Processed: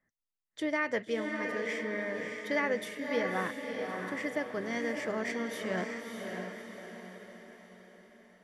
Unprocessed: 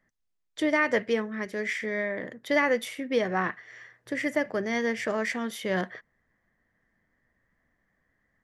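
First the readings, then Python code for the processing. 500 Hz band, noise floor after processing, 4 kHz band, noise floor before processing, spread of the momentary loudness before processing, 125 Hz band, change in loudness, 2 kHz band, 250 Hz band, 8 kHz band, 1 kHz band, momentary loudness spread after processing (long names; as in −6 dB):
−5.0 dB, below −85 dBFS, −5.0 dB, −77 dBFS, 12 LU, −5.0 dB, −6.0 dB, −5.0 dB, −5.0 dB, −5.0 dB, −5.0 dB, 16 LU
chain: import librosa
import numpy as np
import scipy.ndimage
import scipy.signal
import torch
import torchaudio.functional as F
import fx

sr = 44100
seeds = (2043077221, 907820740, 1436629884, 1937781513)

y = fx.echo_diffused(x, sr, ms=613, feedback_pct=49, wet_db=-4.0)
y = fx.noise_reduce_blind(y, sr, reduce_db=7)
y = y * 10.0 ** (-7.0 / 20.0)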